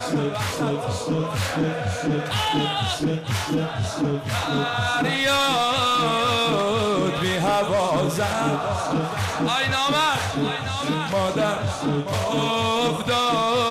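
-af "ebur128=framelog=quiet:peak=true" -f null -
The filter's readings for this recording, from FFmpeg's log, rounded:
Integrated loudness:
  I:         -22.3 LUFS
  Threshold: -32.3 LUFS
Loudness range:
  LRA:         3.5 LU
  Threshold: -42.2 LUFS
  LRA low:   -24.0 LUFS
  LRA high:  -20.5 LUFS
True peak:
  Peak:      -14.8 dBFS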